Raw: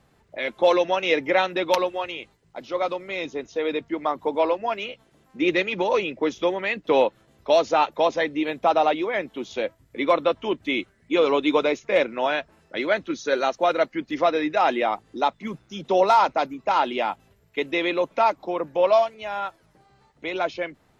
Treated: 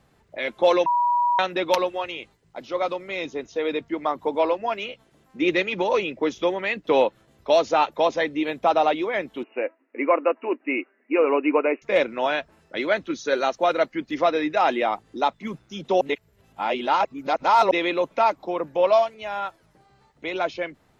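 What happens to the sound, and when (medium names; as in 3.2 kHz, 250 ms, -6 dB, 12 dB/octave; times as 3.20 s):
0.86–1.39 s: bleep 967 Hz -17.5 dBFS
9.43–11.82 s: brick-wall FIR band-pass 230–2900 Hz
16.01–17.71 s: reverse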